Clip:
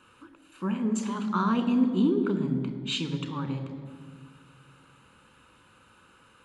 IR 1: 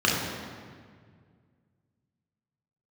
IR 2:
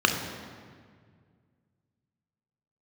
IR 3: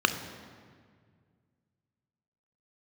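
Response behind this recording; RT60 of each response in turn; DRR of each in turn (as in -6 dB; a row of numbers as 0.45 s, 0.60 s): 3; 1.9 s, 1.9 s, 1.9 s; -4.5 dB, 3.0 dB, 8.0 dB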